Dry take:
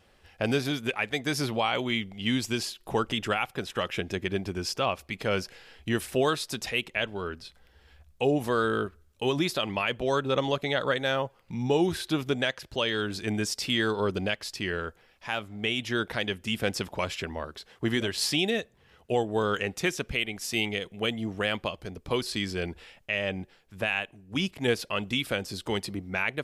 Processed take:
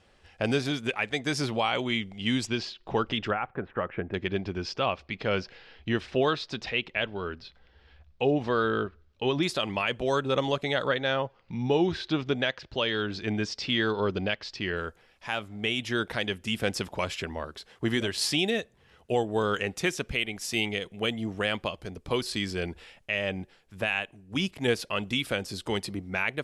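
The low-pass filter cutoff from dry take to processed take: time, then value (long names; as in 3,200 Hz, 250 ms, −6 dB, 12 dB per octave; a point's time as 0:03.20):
low-pass filter 24 dB per octave
9,300 Hz
from 0:02.47 4,900 Hz
from 0:03.31 1,800 Hz
from 0:04.14 4,800 Hz
from 0:09.43 10,000 Hz
from 0:10.87 5,200 Hz
from 0:14.77 12,000 Hz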